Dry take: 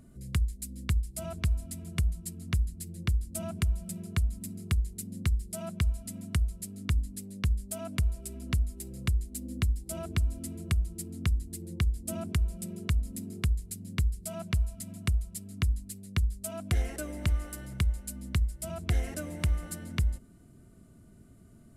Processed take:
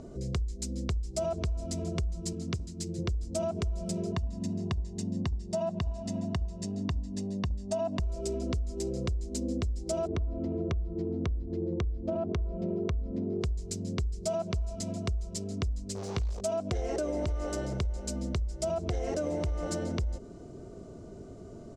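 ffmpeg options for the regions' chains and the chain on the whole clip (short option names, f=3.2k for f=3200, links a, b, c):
-filter_complex "[0:a]asettb=1/sr,asplit=3[a][b][c];[a]atrim=end=2.334[d];[b]atrim=start=2.33:end=2.99,asetpts=PTS-STARTPTS,afade=t=in:d=0.004:c=qsin,afade=t=out:st=0.656:d=0.004:c=qsin,highpass=f=94:w=0.5412,highpass=f=94:w=1.3066,equalizer=f=660:t=o:w=1.2:g=-6[e];[c]atrim=start=2.986[f];[d][e]acrossfade=d=0.004:c1=hsin:c2=qsin[g];[g][f]acrossfade=d=0.004:c1=qsin:c2=hsin,asettb=1/sr,asplit=3[h][i][j];[h]atrim=end=4.124[k];[i]atrim=start=4.12:end=8,asetpts=PTS-STARTPTS,afade=t=in:d=0.004:c=qsin,afade=t=out:st=3.876:d=0.004:c=qsin,highpass=96,aemphasis=mode=reproduction:type=50kf,aecho=1:1:1.1:0.64,atrim=end_sample=171108[l];[j]atrim=start=7.996[m];[k][l]acrossfade=d=0.004:c1=hsin:c2=qsin[n];[n][m]acrossfade=d=0.004:c1=qsin:c2=hsin,asettb=1/sr,asplit=3[o][p][q];[o]atrim=end=10.074[r];[p]atrim=start=10.07:end=13.41,asetpts=PTS-STARTPTS,afade=t=in:d=0.004:c=qsin,afade=t=out:st=3.336:d=0.004:c=qsin,lowpass=4.6k,adynamicsmooth=sensitivity=3:basefreq=1.6k,bandreject=f=1.1k:w=23[s];[q]atrim=start=13.406[t];[r][s]acrossfade=d=0.004:c1=hsin:c2=qsin[u];[u][t]acrossfade=d=0.004:c1=qsin:c2=hsin,asettb=1/sr,asplit=3[v][w][x];[v]atrim=end=15.954[y];[w]atrim=start=15.95:end=16.41,asetpts=PTS-STARTPTS,afade=t=in:d=0.004:c=qsin,afade=t=out:st=0.456:d=0.004:c=qsin,acrusher=bits=9:dc=4:mix=0:aa=0.000001,asplit=2[z][aa];[aa]adelay=18,volume=-8dB[ab];[z][ab]amix=inputs=2:normalize=0,atrim=end_sample=20286[ac];[x]atrim=start=16.406[ad];[y][ac]acrossfade=d=0.004:c1=hsin:c2=qsin[ae];[ae][ad]acrossfade=d=0.004:c1=qsin:c2=hsin,firequalizer=gain_entry='entry(230,0);entry(410,14);entry(1700,-4);entry(6000,6);entry(11000,-23)':delay=0.05:min_phase=1,alimiter=level_in=1dB:limit=-24dB:level=0:latency=1:release=80,volume=-1dB,acompressor=threshold=-35dB:ratio=6,volume=7dB"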